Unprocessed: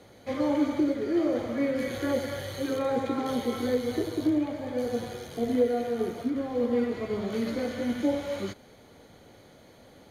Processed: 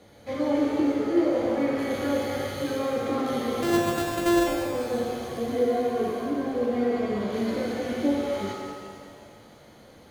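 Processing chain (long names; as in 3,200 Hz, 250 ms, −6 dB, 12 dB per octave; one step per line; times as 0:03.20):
0:03.62–0:04.47: samples sorted by size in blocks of 128 samples
reverb with rising layers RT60 2 s, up +7 semitones, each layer −8 dB, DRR −0.5 dB
level −1.5 dB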